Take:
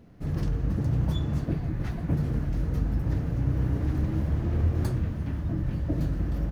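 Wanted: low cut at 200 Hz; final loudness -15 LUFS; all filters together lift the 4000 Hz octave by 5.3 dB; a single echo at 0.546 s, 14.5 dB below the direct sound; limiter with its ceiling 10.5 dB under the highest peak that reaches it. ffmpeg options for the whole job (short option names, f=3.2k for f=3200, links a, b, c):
-af "highpass=200,equalizer=f=4k:t=o:g=6.5,alimiter=level_in=5dB:limit=-24dB:level=0:latency=1,volume=-5dB,aecho=1:1:546:0.188,volume=23dB"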